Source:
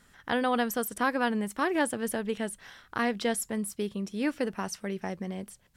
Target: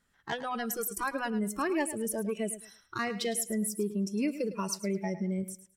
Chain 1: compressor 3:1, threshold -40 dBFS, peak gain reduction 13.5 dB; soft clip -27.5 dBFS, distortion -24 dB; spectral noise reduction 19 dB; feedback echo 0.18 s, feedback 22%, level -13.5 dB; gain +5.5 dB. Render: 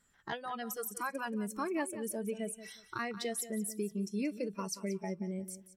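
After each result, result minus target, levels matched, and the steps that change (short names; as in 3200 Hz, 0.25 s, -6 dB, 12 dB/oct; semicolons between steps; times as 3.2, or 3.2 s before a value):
echo 73 ms late; compressor: peak gain reduction +6.5 dB
change: feedback echo 0.107 s, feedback 22%, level -13.5 dB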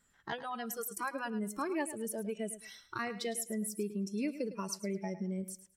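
compressor: peak gain reduction +6.5 dB
change: compressor 3:1, threshold -30.5 dBFS, peak gain reduction 7.5 dB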